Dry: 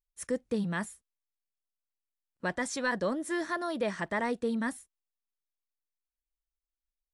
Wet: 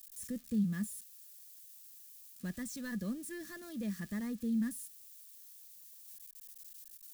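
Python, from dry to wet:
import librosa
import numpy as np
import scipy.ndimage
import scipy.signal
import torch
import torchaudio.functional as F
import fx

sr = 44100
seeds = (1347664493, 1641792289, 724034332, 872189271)

y = x + 0.5 * 10.0 ** (-29.5 / 20.0) * np.diff(np.sign(x), prepend=np.sign(x[:1]))
y = fx.tone_stack(y, sr, knobs='10-0-1')
y = fx.small_body(y, sr, hz=(210.0, 1200.0, 1700.0), ring_ms=45, db=11)
y = y * 10.0 ** (7.5 / 20.0)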